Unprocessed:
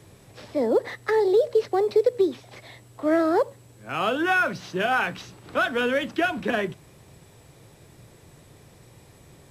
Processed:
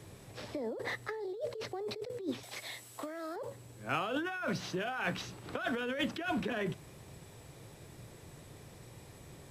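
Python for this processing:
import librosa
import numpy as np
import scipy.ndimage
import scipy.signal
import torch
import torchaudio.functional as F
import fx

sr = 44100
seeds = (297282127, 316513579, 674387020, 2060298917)

y = fx.over_compress(x, sr, threshold_db=-29.0, ratio=-1.0)
y = fx.tilt_eq(y, sr, slope=3.0, at=(2.43, 3.36))
y = F.gain(torch.from_numpy(y), -7.5).numpy()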